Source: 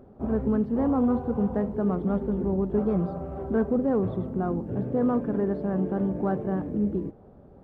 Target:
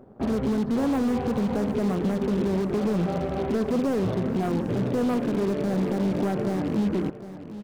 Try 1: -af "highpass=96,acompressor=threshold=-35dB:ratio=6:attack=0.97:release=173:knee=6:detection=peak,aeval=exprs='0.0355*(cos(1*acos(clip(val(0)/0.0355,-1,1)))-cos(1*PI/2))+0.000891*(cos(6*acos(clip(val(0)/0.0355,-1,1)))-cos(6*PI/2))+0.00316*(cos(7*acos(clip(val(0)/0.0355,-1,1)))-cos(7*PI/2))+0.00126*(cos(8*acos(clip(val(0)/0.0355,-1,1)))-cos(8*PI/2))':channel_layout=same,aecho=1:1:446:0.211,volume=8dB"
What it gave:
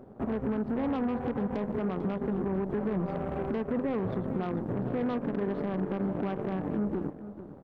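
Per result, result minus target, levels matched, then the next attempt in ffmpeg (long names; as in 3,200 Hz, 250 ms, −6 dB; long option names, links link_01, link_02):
echo 309 ms early; downward compressor: peak gain reduction +7.5 dB
-af "highpass=96,acompressor=threshold=-35dB:ratio=6:attack=0.97:release=173:knee=6:detection=peak,aeval=exprs='0.0355*(cos(1*acos(clip(val(0)/0.0355,-1,1)))-cos(1*PI/2))+0.000891*(cos(6*acos(clip(val(0)/0.0355,-1,1)))-cos(6*PI/2))+0.00316*(cos(7*acos(clip(val(0)/0.0355,-1,1)))-cos(7*PI/2))+0.00126*(cos(8*acos(clip(val(0)/0.0355,-1,1)))-cos(8*PI/2))':channel_layout=same,aecho=1:1:755:0.211,volume=8dB"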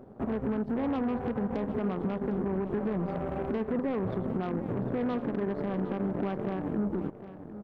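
downward compressor: peak gain reduction +7.5 dB
-af "highpass=96,acompressor=threshold=-26dB:ratio=6:attack=0.97:release=173:knee=6:detection=peak,aeval=exprs='0.0355*(cos(1*acos(clip(val(0)/0.0355,-1,1)))-cos(1*PI/2))+0.000891*(cos(6*acos(clip(val(0)/0.0355,-1,1)))-cos(6*PI/2))+0.00316*(cos(7*acos(clip(val(0)/0.0355,-1,1)))-cos(7*PI/2))+0.00126*(cos(8*acos(clip(val(0)/0.0355,-1,1)))-cos(8*PI/2))':channel_layout=same,aecho=1:1:755:0.211,volume=8dB"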